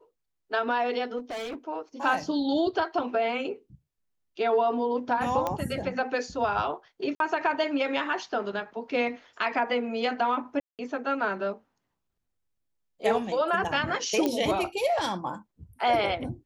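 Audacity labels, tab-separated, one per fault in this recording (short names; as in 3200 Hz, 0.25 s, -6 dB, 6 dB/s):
1.180000	1.550000	clipped -32 dBFS
5.470000	5.470000	pop -15 dBFS
7.150000	7.200000	gap 52 ms
10.600000	10.790000	gap 0.188 s
14.260000	14.260000	pop -13 dBFS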